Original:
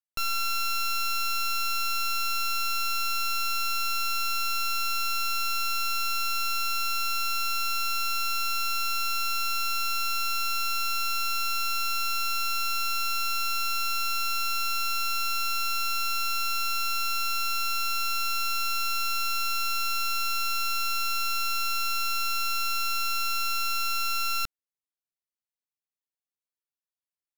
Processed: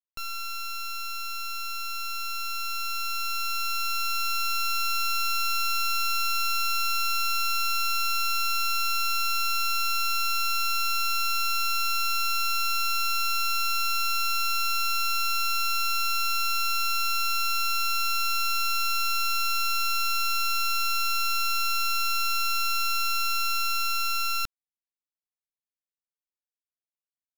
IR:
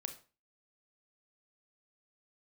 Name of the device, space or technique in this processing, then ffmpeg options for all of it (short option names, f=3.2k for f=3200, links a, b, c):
voice memo with heavy noise removal: -af "anlmdn=3.98,dynaudnorm=f=620:g=11:m=8dB,volume=-6dB"